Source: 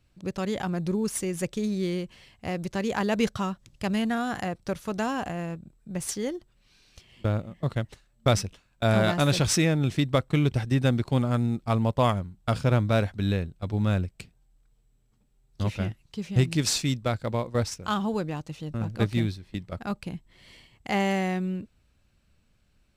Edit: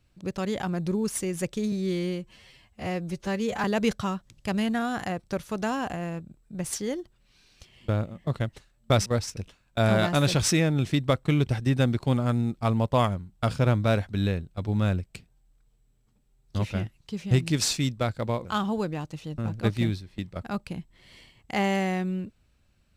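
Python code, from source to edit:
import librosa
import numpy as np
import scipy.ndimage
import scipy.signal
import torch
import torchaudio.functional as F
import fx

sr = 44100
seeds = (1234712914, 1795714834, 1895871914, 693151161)

y = fx.edit(x, sr, fx.stretch_span(start_s=1.72, length_s=1.28, factor=1.5),
    fx.move(start_s=17.5, length_s=0.31, to_s=8.42), tone=tone)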